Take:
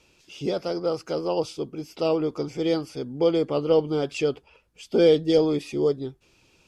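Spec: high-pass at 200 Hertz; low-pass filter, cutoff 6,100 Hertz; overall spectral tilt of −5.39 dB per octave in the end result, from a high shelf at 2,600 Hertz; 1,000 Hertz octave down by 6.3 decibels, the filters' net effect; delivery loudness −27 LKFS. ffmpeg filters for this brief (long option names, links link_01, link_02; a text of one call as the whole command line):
ffmpeg -i in.wav -af "highpass=200,lowpass=6100,equalizer=frequency=1000:width_type=o:gain=-8.5,highshelf=frequency=2600:gain=-3.5,volume=-0.5dB" out.wav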